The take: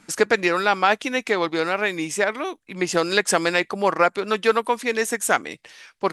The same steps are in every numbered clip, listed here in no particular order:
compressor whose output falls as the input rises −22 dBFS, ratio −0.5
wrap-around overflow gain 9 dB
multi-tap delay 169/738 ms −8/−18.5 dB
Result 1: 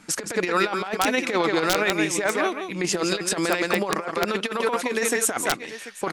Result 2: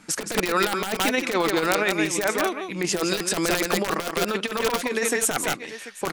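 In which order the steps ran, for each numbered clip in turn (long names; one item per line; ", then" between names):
multi-tap delay, then compressor whose output falls as the input rises, then wrap-around overflow
wrap-around overflow, then multi-tap delay, then compressor whose output falls as the input rises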